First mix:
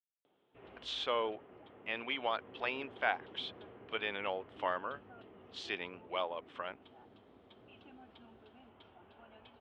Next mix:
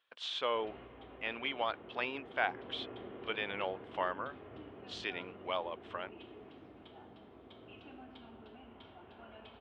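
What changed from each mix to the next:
speech: entry -0.65 s; reverb: on, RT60 1.1 s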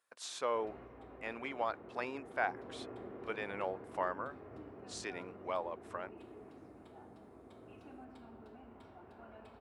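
master: remove resonant low-pass 3.2 kHz, resonance Q 6

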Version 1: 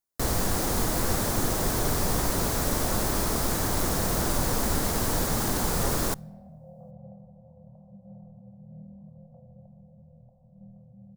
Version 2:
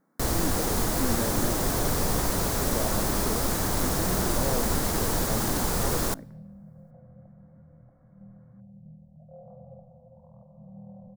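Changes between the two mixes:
speech: unmuted; second sound: entry -2.40 s

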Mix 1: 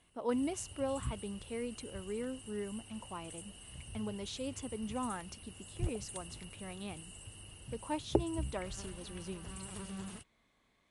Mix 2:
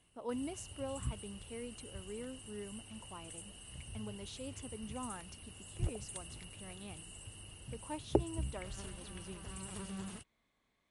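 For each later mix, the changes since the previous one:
speech -6.0 dB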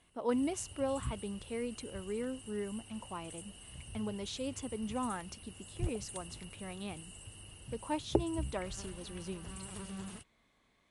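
speech +7.5 dB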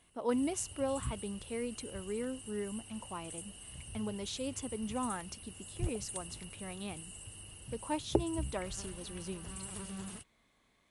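master: add treble shelf 9.5 kHz +9 dB

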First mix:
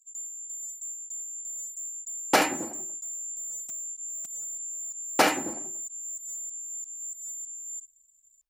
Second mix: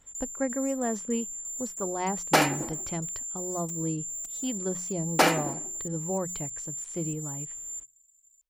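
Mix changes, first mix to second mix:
speech: unmuted; master: add hum notches 60/120/180 Hz

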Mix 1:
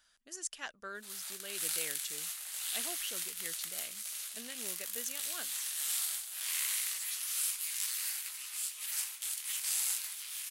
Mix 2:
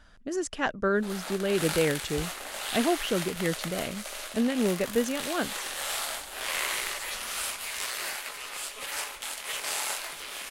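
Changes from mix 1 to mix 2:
background: remove Bessel high-pass 910 Hz, order 2; master: remove pre-emphasis filter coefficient 0.97

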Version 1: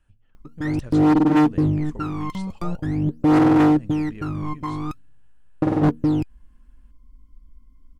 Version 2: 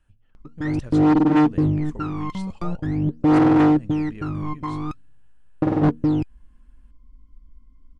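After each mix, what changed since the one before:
background: add distance through air 70 m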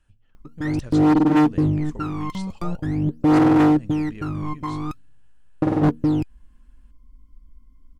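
speech: add peaking EQ 5.5 kHz +5 dB 1.7 oct; background: remove distance through air 70 m

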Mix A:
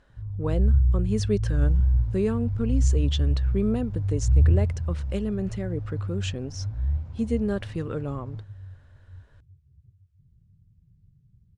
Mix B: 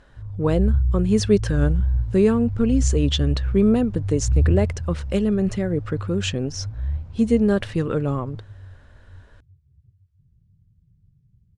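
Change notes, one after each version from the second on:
speech +8.0 dB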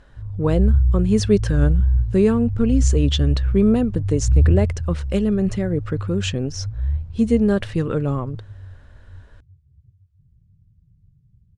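second sound -6.5 dB; master: add bass shelf 130 Hz +4.5 dB

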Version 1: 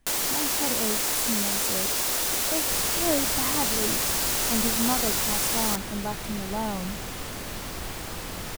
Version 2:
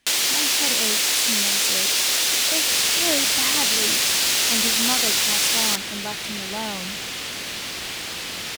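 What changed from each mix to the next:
master: add frequency weighting D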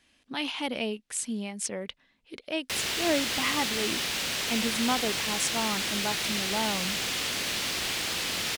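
first sound: muted

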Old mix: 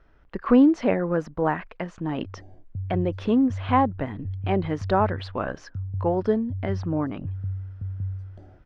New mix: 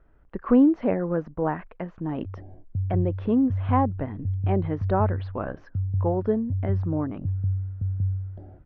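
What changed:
background +5.0 dB; master: add tape spacing loss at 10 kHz 38 dB

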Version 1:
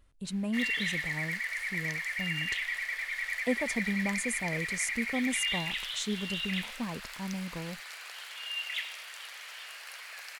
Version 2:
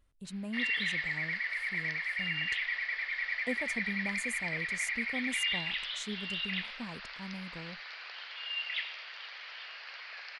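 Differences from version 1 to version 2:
speech -6.5 dB; background: add elliptic low-pass 4.9 kHz, stop band 50 dB

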